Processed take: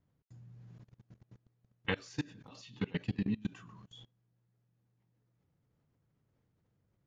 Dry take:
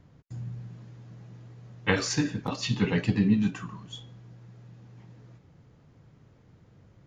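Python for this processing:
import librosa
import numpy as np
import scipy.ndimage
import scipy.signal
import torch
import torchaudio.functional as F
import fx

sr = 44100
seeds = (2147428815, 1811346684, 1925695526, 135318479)

y = fx.dynamic_eq(x, sr, hz=3200.0, q=1.9, threshold_db=-51.0, ratio=4.0, max_db=5)
y = fx.level_steps(y, sr, step_db=23)
y = y * 10.0 ** (-7.5 / 20.0)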